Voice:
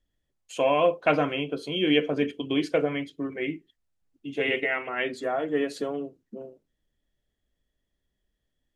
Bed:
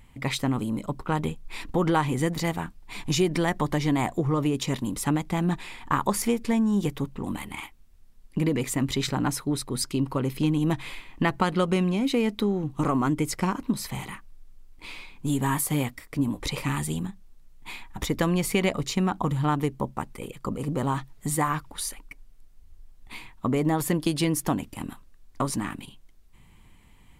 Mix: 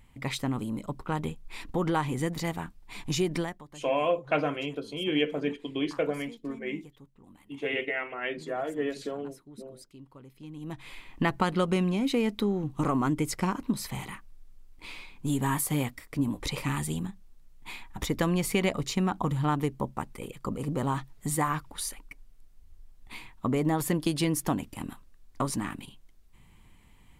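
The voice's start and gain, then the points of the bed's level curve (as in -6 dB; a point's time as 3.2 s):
3.25 s, -4.5 dB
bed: 3.4 s -4.5 dB
3.64 s -23.5 dB
10.37 s -23.5 dB
11.07 s -2.5 dB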